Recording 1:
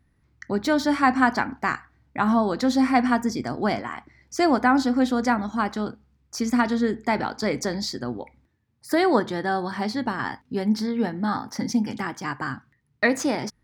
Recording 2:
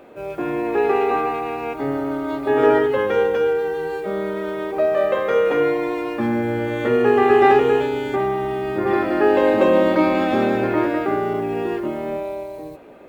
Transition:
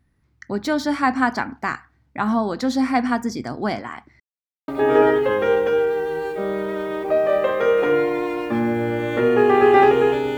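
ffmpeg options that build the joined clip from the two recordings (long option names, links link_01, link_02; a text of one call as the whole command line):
ffmpeg -i cue0.wav -i cue1.wav -filter_complex "[0:a]apad=whole_dur=10.37,atrim=end=10.37,asplit=2[link_01][link_02];[link_01]atrim=end=4.2,asetpts=PTS-STARTPTS,afade=type=out:start_time=4.196:duration=0.004:curve=hsin[link_03];[link_02]atrim=start=4.2:end=4.68,asetpts=PTS-STARTPTS,volume=0[link_04];[1:a]atrim=start=2.36:end=8.05,asetpts=PTS-STARTPTS,afade=type=in:duration=0.004:curve=hsin[link_05];[link_03][link_04][link_05]concat=n=3:v=0:a=1" out.wav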